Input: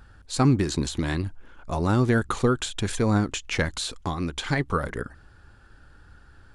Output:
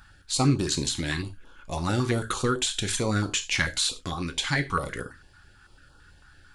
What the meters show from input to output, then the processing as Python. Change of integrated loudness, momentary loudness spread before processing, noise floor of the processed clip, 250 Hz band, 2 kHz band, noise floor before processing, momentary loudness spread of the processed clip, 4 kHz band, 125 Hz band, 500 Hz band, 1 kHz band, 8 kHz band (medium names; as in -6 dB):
-1.0 dB, 12 LU, -55 dBFS, -4.0 dB, +1.5 dB, -52 dBFS, 9 LU, +5.0 dB, -3.5 dB, -4.0 dB, -2.0 dB, +5.5 dB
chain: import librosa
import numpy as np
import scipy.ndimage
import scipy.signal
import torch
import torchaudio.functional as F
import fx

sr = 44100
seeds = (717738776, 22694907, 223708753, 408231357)

y = fx.tilt_shelf(x, sr, db=-5.0, hz=860.0)
y = fx.rev_gated(y, sr, seeds[0], gate_ms=120, shape='falling', drr_db=6.5)
y = fx.filter_held_notch(y, sr, hz=9.0, low_hz=470.0, high_hz=2000.0)